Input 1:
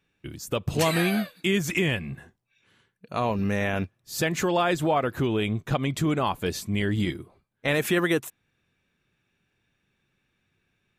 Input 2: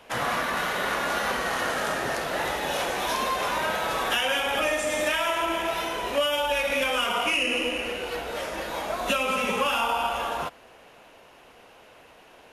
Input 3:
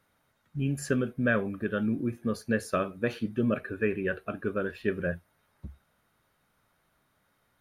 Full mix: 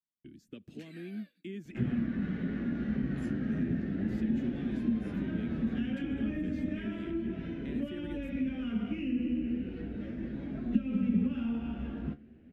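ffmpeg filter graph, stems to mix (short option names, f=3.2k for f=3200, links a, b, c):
-filter_complex "[0:a]bass=f=250:g=3,treble=f=4k:g=-6,acrossover=split=380|1100|3800[a][b][c][d];[a]acompressor=threshold=-56dB:ratio=4[e];[b]acompressor=threshold=-31dB:ratio=4[f];[c]acompressor=threshold=-35dB:ratio=4[g];[d]acompressor=threshold=-50dB:ratio=4[h];[e][f][g][h]amix=inputs=4:normalize=0,volume=-7dB[i];[1:a]lowpass=1.8k,equalizer=f=82:t=o:w=2:g=9,flanger=delay=6.9:depth=8.4:regen=54:speed=0.34:shape=triangular,adelay=1650,volume=1.5dB[j];[2:a]acompressor=threshold=-35dB:ratio=6,flanger=delay=17.5:depth=5.6:speed=0.34,adelay=2400,volume=-2dB[k];[i][j][k]amix=inputs=3:normalize=0,firequalizer=gain_entry='entry(110,0);entry(230,12);entry(490,-15);entry(1000,-30);entry(1600,-13);entry(3500,-12);entry(13000,-15)':delay=0.05:min_phase=1,acrossover=split=270[l][m];[m]acompressor=threshold=-37dB:ratio=6[n];[l][n]amix=inputs=2:normalize=0,agate=range=-33dB:threshold=-56dB:ratio=3:detection=peak"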